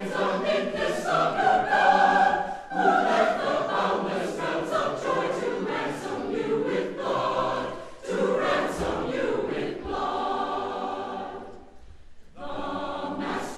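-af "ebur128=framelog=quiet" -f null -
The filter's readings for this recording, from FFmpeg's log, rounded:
Integrated loudness:
  I:         -25.9 LUFS
  Threshold: -36.3 LUFS
Loudness range:
  LRA:         9.5 LU
  Threshold: -46.4 LUFS
  LRA low:   -32.0 LUFS
  LRA high:  -22.6 LUFS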